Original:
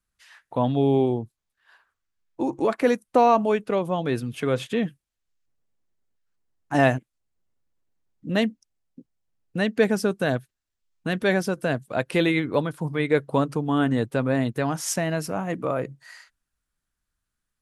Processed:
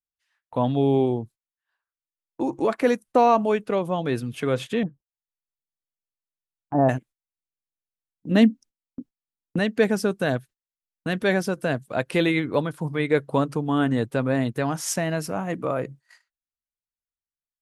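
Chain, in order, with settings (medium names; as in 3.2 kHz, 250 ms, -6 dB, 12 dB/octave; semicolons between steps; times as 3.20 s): 4.83–6.89 s: low-pass 1 kHz 24 dB/octave; 8.31–9.59 s: peaking EQ 260 Hz +11.5 dB 0.79 oct; gate -43 dBFS, range -23 dB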